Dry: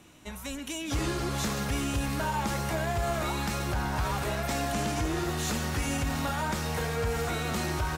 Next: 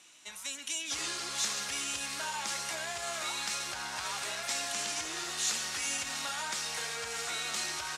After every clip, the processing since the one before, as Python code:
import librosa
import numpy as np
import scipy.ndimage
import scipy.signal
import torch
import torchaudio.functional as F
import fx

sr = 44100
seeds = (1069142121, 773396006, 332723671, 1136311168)

y = fx.weighting(x, sr, curve='ITU-R 468')
y = y * librosa.db_to_amplitude(-7.0)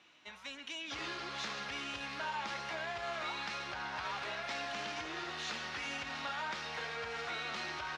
y = fx.air_absorb(x, sr, metres=280.0)
y = y * librosa.db_to_amplitude(1.0)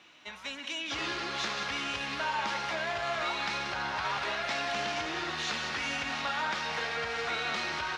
y = x + 10.0 ** (-8.5 / 20.0) * np.pad(x, (int(185 * sr / 1000.0), 0))[:len(x)]
y = y * librosa.db_to_amplitude(6.5)